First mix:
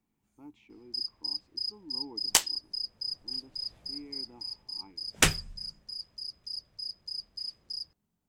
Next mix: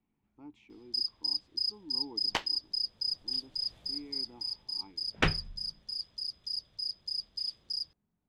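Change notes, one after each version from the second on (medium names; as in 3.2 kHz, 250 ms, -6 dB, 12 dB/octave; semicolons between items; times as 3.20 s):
first sound: add peaking EQ 3.5 kHz +14 dB 0.43 oct; second sound: add distance through air 320 m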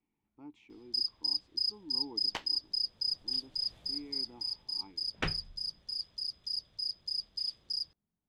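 second sound -7.0 dB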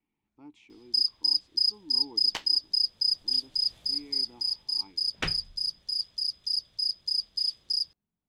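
master: add treble shelf 2.9 kHz +9.5 dB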